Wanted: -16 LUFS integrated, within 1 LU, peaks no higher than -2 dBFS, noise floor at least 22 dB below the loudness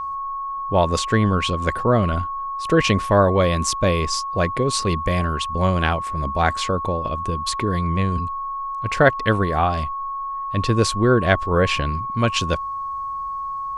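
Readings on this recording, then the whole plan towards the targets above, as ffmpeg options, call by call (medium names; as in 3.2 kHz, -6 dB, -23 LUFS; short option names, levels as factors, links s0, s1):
steady tone 1.1 kHz; tone level -25 dBFS; loudness -21.0 LUFS; peak level -2.0 dBFS; loudness target -16.0 LUFS
-> -af "bandreject=f=1100:w=30"
-af "volume=1.78,alimiter=limit=0.794:level=0:latency=1"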